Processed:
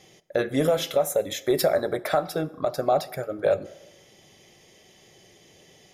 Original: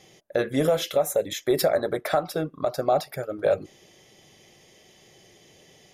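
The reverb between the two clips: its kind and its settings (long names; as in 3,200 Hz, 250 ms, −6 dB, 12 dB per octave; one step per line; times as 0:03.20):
dense smooth reverb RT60 1.1 s, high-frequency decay 0.6×, DRR 16.5 dB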